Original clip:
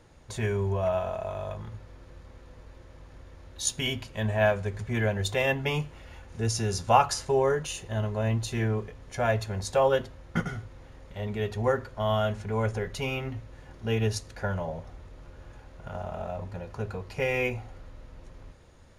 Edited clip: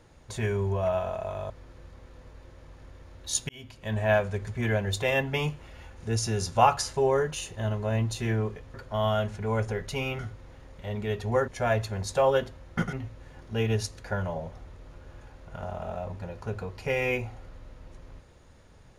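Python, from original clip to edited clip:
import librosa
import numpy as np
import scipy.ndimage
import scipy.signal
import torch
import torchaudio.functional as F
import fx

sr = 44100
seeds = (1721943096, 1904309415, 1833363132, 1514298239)

y = fx.edit(x, sr, fx.cut(start_s=1.5, length_s=0.32),
    fx.fade_in_span(start_s=3.81, length_s=0.52),
    fx.swap(start_s=9.06, length_s=1.45, other_s=11.8, other_length_s=1.45), tone=tone)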